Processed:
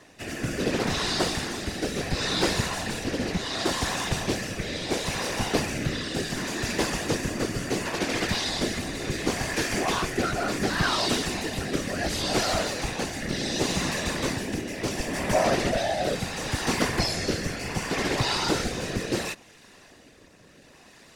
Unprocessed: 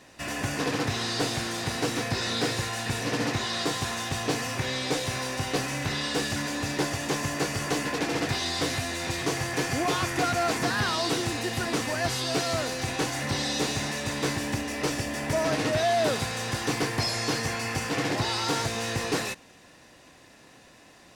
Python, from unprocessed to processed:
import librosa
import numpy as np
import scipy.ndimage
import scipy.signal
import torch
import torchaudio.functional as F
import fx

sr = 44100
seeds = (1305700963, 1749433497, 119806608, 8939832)

y = fx.rotary(x, sr, hz=0.7)
y = fx.whisperise(y, sr, seeds[0])
y = y * librosa.db_to_amplitude(3.0)